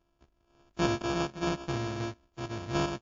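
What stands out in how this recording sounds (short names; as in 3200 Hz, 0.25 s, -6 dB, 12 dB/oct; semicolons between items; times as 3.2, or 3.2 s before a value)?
a buzz of ramps at a fixed pitch in blocks of 128 samples; random-step tremolo; aliases and images of a low sample rate 2000 Hz, jitter 0%; WMA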